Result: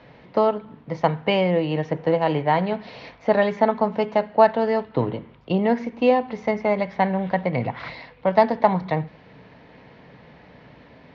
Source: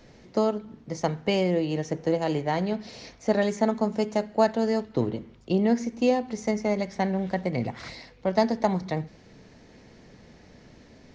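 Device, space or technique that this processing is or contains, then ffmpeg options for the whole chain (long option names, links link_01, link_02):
guitar cabinet: -af "highpass=78,equalizer=frequency=88:width_type=q:width=4:gain=-9,equalizer=frequency=220:width_type=q:width=4:gain=-7,equalizer=frequency=360:width_type=q:width=4:gain=-8,equalizer=frequency=980:width_type=q:width=4:gain=5,lowpass=frequency=3400:width=0.5412,lowpass=frequency=3400:width=1.3066,volume=6.5dB"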